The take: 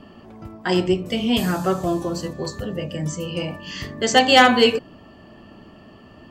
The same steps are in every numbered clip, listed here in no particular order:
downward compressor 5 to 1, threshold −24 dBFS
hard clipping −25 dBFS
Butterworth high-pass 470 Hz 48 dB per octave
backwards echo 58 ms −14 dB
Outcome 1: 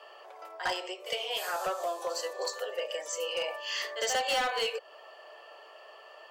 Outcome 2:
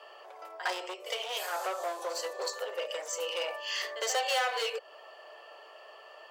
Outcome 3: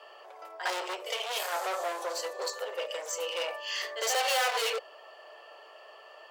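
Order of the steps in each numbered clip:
backwards echo, then downward compressor, then Butterworth high-pass, then hard clipping
downward compressor, then backwards echo, then hard clipping, then Butterworth high-pass
backwards echo, then hard clipping, then downward compressor, then Butterworth high-pass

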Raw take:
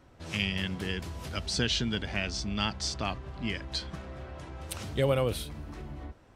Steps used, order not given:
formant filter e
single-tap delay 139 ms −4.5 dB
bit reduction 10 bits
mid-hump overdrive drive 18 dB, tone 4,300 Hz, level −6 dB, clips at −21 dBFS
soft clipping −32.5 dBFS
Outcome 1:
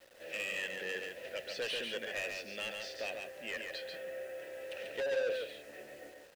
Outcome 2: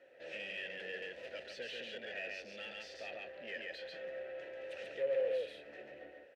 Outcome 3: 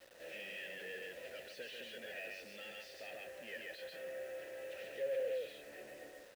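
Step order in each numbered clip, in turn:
formant filter, then mid-hump overdrive, then bit reduction, then soft clipping, then single-tap delay
single-tap delay, then soft clipping, then mid-hump overdrive, then bit reduction, then formant filter
single-tap delay, then mid-hump overdrive, then soft clipping, then formant filter, then bit reduction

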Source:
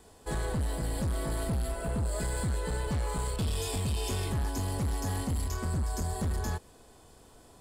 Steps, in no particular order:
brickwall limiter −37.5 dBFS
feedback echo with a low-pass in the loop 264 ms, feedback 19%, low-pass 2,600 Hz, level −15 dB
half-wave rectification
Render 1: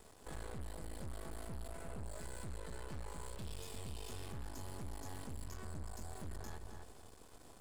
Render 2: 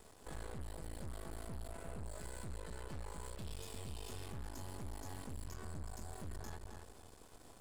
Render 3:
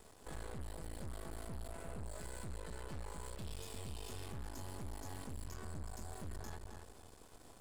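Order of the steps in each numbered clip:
half-wave rectification, then feedback echo with a low-pass in the loop, then brickwall limiter
feedback echo with a low-pass in the loop, then brickwall limiter, then half-wave rectification
feedback echo with a low-pass in the loop, then half-wave rectification, then brickwall limiter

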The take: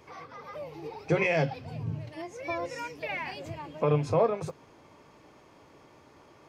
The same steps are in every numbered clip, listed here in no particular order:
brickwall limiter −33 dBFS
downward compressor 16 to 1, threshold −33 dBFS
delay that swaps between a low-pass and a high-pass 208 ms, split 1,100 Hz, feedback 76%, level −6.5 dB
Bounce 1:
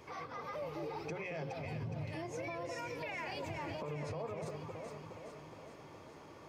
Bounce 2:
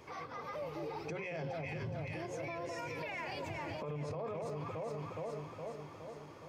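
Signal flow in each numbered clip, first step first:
downward compressor, then delay that swaps between a low-pass and a high-pass, then brickwall limiter
delay that swaps between a low-pass and a high-pass, then brickwall limiter, then downward compressor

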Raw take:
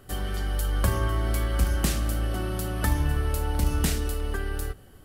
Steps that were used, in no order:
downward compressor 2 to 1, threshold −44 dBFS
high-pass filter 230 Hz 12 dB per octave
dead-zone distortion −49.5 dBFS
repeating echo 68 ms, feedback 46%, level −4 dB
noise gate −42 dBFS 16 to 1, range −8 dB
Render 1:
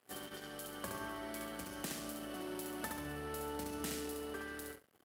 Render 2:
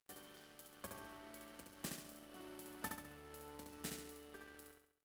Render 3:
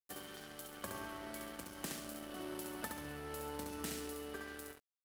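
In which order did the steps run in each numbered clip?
downward compressor, then repeating echo, then dead-zone distortion, then noise gate, then high-pass filter
downward compressor, then high-pass filter, then dead-zone distortion, then noise gate, then repeating echo
downward compressor, then repeating echo, then noise gate, then high-pass filter, then dead-zone distortion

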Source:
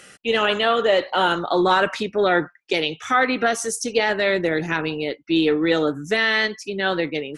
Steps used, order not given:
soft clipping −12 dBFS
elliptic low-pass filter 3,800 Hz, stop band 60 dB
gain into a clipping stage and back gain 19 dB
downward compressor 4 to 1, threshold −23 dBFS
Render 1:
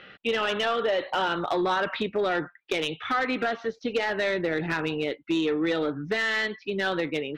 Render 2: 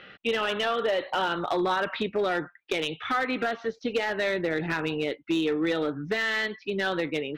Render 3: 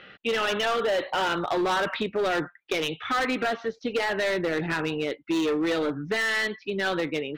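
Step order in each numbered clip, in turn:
elliptic low-pass filter, then soft clipping, then downward compressor, then gain into a clipping stage and back
elliptic low-pass filter, then downward compressor, then gain into a clipping stage and back, then soft clipping
elliptic low-pass filter, then soft clipping, then gain into a clipping stage and back, then downward compressor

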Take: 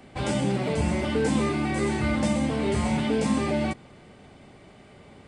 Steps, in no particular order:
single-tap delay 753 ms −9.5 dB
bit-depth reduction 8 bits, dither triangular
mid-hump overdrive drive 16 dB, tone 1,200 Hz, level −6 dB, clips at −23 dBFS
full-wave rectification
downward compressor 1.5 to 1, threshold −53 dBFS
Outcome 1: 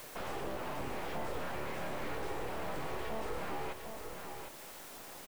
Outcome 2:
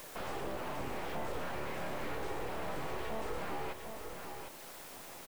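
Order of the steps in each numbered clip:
full-wave rectification, then mid-hump overdrive, then bit-depth reduction, then single-tap delay, then downward compressor
full-wave rectification, then mid-hump overdrive, then single-tap delay, then bit-depth reduction, then downward compressor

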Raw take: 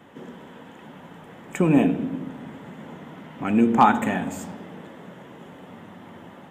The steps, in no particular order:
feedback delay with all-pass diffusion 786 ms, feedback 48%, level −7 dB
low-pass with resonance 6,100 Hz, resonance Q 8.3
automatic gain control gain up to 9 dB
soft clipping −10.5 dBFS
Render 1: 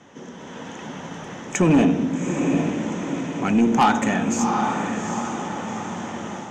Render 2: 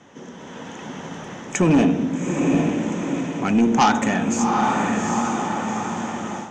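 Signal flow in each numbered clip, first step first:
low-pass with resonance, then automatic gain control, then feedback delay with all-pass diffusion, then soft clipping
feedback delay with all-pass diffusion, then automatic gain control, then soft clipping, then low-pass with resonance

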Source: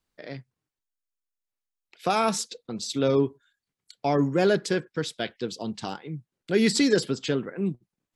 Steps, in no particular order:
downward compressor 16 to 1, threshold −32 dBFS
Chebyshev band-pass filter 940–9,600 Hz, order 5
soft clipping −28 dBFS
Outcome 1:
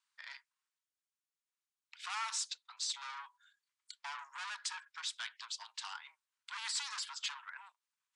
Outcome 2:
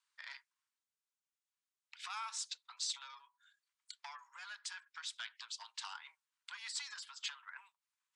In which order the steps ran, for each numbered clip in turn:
soft clipping, then downward compressor, then Chebyshev band-pass filter
downward compressor, then soft clipping, then Chebyshev band-pass filter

